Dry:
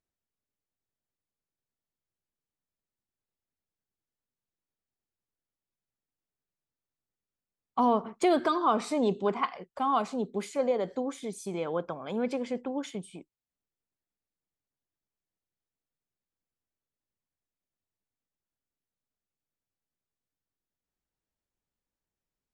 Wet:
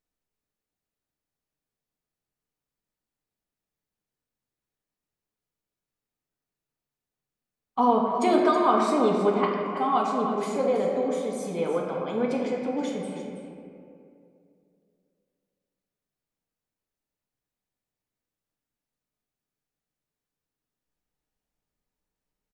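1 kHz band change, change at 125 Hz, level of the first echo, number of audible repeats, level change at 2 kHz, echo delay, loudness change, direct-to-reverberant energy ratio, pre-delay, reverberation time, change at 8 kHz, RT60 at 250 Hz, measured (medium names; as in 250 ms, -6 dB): +5.0 dB, +5.0 dB, -10.5 dB, 1, +4.0 dB, 324 ms, +5.0 dB, -2.5 dB, 4 ms, 2.5 s, +2.0 dB, 2.8 s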